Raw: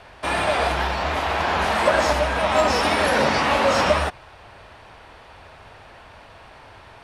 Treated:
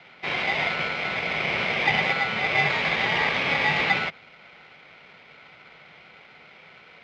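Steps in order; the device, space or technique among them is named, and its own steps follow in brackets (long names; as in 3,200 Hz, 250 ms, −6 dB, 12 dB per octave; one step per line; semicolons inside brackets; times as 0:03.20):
ring modulator pedal into a guitar cabinet (ring modulator with a square carrier 1,400 Hz; loudspeaker in its box 81–3,900 Hz, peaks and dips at 86 Hz −8 dB, 160 Hz +8 dB, 310 Hz −6 dB, 2,200 Hz +6 dB)
level −5.5 dB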